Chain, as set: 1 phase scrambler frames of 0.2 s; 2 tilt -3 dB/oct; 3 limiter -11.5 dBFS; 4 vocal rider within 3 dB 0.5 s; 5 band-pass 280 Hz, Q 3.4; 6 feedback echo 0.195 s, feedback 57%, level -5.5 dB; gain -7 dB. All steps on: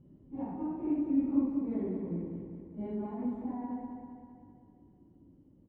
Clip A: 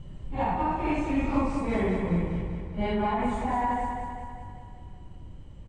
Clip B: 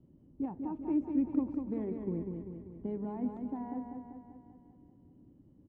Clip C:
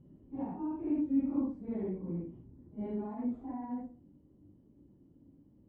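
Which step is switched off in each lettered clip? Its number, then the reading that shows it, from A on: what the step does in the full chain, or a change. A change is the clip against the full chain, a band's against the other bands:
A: 5, 250 Hz band -10.0 dB; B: 1, momentary loudness spread change -1 LU; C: 6, echo-to-direct -4.0 dB to none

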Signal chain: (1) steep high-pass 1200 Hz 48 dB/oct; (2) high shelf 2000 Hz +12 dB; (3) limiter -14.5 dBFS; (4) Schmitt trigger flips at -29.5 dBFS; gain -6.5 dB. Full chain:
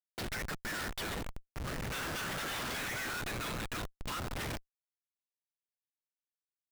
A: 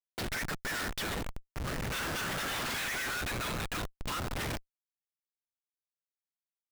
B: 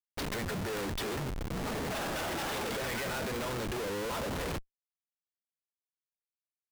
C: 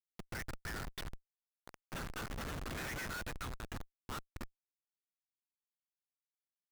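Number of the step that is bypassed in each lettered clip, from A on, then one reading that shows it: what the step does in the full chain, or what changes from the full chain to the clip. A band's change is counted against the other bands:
3, loudness change +3.0 LU; 1, 500 Hz band +6.5 dB; 2, 125 Hz band +2.5 dB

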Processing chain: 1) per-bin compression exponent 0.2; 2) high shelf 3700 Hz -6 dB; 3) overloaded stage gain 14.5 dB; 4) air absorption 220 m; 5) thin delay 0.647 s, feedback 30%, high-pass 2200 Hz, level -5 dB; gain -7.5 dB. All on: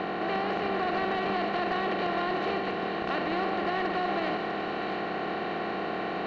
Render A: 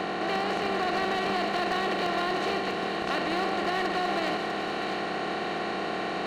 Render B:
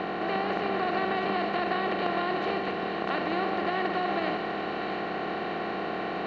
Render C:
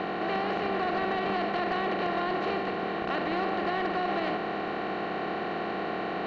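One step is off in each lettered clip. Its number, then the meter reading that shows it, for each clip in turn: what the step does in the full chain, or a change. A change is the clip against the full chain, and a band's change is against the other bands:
4, 4 kHz band +4.5 dB; 3, distortion -18 dB; 5, echo-to-direct -10.0 dB to none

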